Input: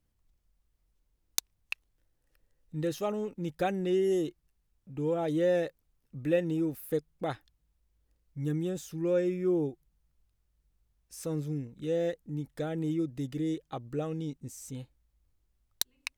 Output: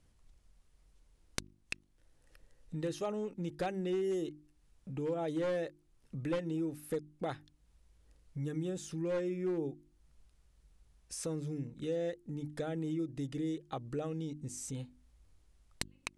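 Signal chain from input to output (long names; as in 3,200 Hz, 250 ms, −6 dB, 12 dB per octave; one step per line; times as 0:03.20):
wavefolder on the positive side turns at −23 dBFS
Butterworth low-pass 11,000 Hz 48 dB per octave
mains-hum notches 50/100/150/200/250/300/350 Hz
downward compressor 2 to 1, threshold −54 dBFS, peak gain reduction 17 dB
level +9 dB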